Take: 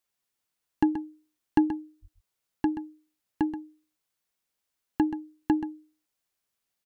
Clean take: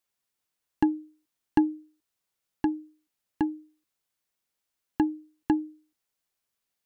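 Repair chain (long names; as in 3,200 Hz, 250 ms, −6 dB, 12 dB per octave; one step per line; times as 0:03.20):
0:02.01–0:02.13: high-pass filter 140 Hz 24 dB per octave
echo removal 129 ms −11 dB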